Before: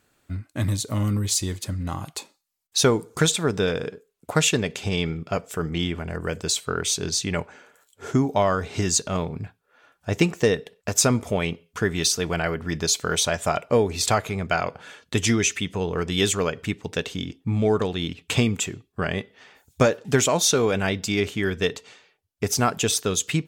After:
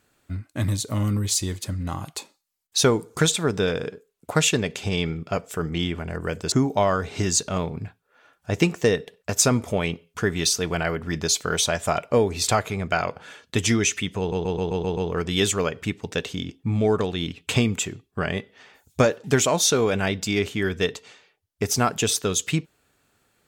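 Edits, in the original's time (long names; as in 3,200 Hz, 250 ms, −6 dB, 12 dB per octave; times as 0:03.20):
0:06.52–0:08.11: remove
0:15.78: stutter 0.13 s, 7 plays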